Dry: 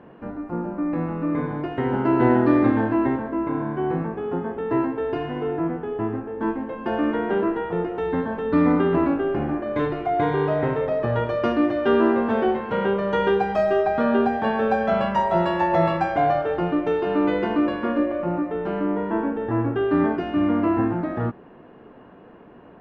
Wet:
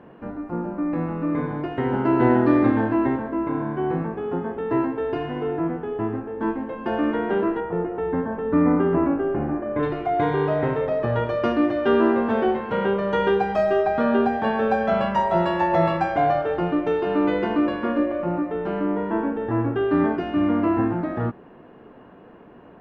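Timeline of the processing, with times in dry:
7.60–9.83 s: Gaussian low-pass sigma 3.5 samples

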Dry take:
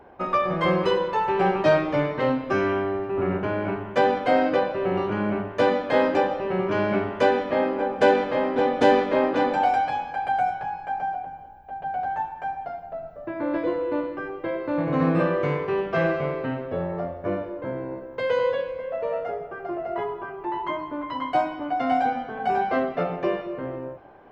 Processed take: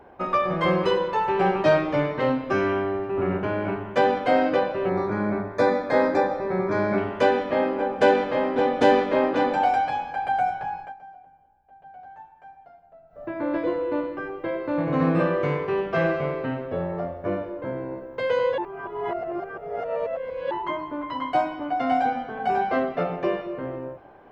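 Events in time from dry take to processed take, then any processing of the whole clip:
4.89–6.98 s: Butterworth band-stop 2.9 kHz, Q 2.6
10.80–13.23 s: dip -16.5 dB, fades 0.14 s
18.58–20.51 s: reverse

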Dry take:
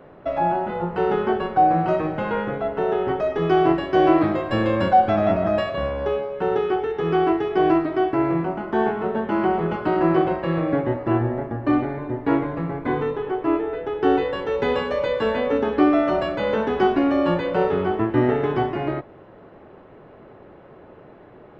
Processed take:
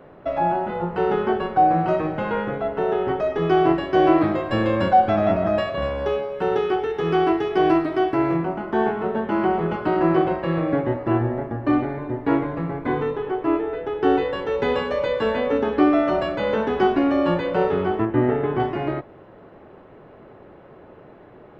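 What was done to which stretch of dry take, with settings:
5.82–8.37 s: treble shelf 4.1 kHz +9.5 dB
18.05–18.60 s: distance through air 300 m

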